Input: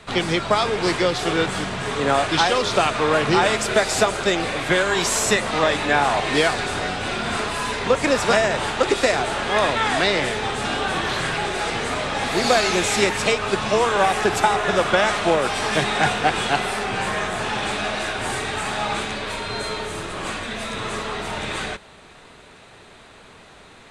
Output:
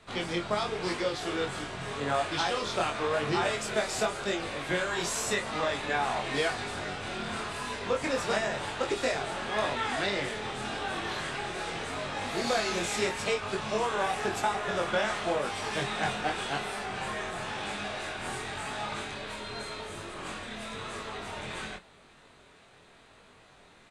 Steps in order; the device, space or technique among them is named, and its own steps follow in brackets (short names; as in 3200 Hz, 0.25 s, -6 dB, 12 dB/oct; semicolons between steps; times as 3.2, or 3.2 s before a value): double-tracked vocal (doubler 29 ms -12 dB; chorus 0.9 Hz, delay 20 ms, depth 3.7 ms); gain -8 dB